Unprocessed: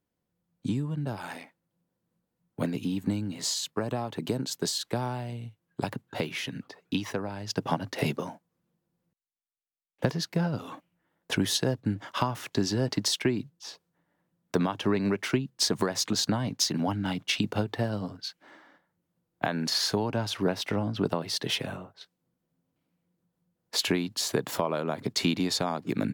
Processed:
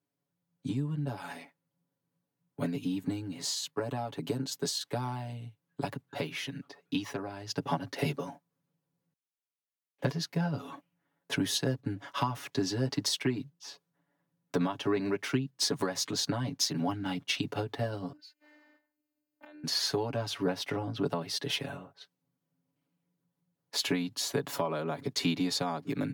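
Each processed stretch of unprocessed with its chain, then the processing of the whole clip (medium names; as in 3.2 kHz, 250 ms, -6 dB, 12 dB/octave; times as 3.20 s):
18.12–19.64 s: compression 2.5:1, threshold -51 dBFS + robot voice 299 Hz
whole clip: high-pass 100 Hz; band-stop 7.6 kHz, Q 21; comb 7.1 ms, depth 91%; trim -6 dB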